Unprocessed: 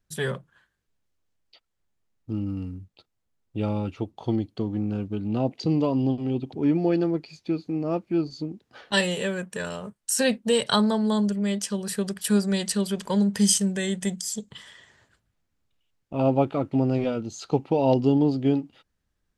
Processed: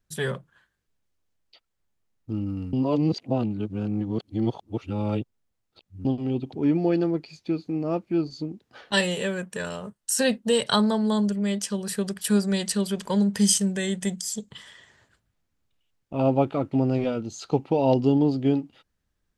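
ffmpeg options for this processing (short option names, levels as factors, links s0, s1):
-filter_complex "[0:a]asettb=1/sr,asplit=3[s0][s1][s2];[s0]atrim=end=9.814[s3];[s1]atrim=start=9.81:end=10.6,asetpts=PTS-STARTPTS,afade=t=in:d=0.004:c=qsin,afade=t=out:st=0.786:d=0.004:c=qsin,bandreject=f=2300:w=12[s4];[s2]atrim=start=10.596[s5];[s3][s4]acrossfade=d=0.004:c1=hsin:c2=qsin[s6];[s6][s5]acrossfade=d=0.004:c1=qsin:c2=hsin,asplit=3[s7][s8][s9];[s7]atrim=end=2.732[s10];[s8]atrim=start=2.728:end=6.052,asetpts=PTS-STARTPTS,areverse[s11];[s9]atrim=start=6.048[s12];[s10][s11]acrossfade=d=0.004:c1=hsin:c2=hsin[s13];[s13][s12]acrossfade=d=0.004:c1=hsin:c2=hsin"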